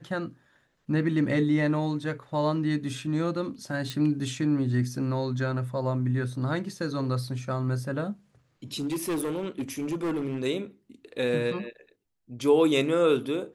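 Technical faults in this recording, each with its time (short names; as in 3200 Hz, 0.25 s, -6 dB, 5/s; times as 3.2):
3.9 pop -18 dBFS
8.77–10.39 clipped -25.5 dBFS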